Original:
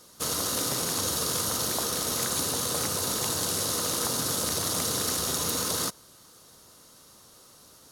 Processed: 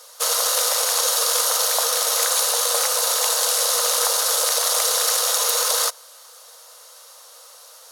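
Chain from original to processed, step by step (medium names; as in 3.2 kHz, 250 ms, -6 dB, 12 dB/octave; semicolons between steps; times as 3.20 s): brick-wall FIR high-pass 450 Hz; trim +9 dB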